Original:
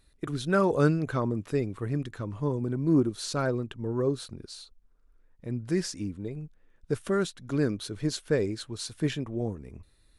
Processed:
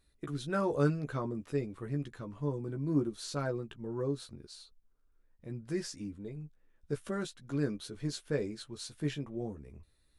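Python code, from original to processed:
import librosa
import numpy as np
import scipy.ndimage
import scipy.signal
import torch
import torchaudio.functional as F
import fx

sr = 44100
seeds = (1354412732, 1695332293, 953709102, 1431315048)

y = fx.doubler(x, sr, ms=14.0, db=-5.5)
y = y * 10.0 ** (-8.0 / 20.0)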